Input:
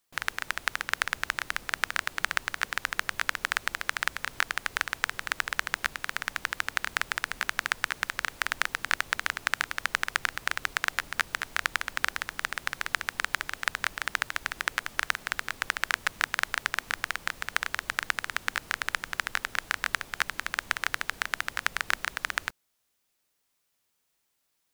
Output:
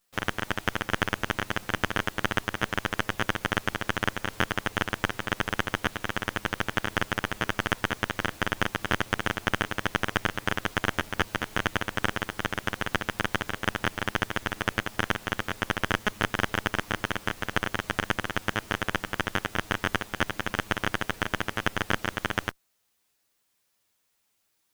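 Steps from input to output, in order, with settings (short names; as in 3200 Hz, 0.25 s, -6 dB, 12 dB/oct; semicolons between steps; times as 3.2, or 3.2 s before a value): minimum comb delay 9.5 ms; in parallel at -4 dB: soft clip -17.5 dBFS, distortion -8 dB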